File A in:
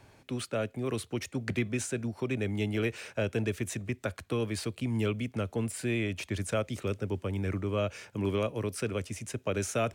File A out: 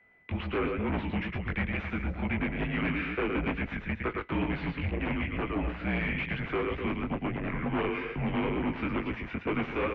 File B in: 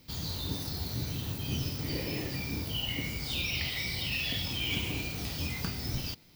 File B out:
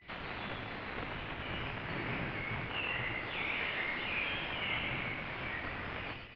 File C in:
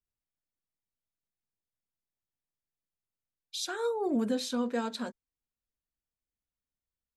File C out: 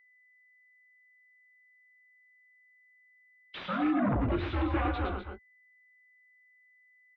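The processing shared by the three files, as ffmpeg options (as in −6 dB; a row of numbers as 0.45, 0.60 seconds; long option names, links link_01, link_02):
-af "aemphasis=mode=production:type=75kf,agate=range=-17dB:threshold=-48dB:ratio=16:detection=peak,acompressor=threshold=-26dB:ratio=6,asoftclip=type=hard:threshold=-24dB,aecho=1:1:110.8|250.7:0.501|0.251,flanger=delay=16.5:depth=5.4:speed=2.2,afreqshift=25,aeval=exprs='0.106*sin(PI/2*3.16*val(0)/0.106)':channel_layout=same,highpass=frequency=250:width_type=q:width=0.5412,highpass=frequency=250:width_type=q:width=1.307,lowpass=frequency=2800:width_type=q:width=0.5176,lowpass=frequency=2800:width_type=q:width=0.7071,lowpass=frequency=2800:width_type=q:width=1.932,afreqshift=-190,aeval=exprs='val(0)+0.00141*sin(2*PI*2000*n/s)':channel_layout=same,volume=-4dB"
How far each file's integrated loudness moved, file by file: +1.0, −4.0, +1.5 LU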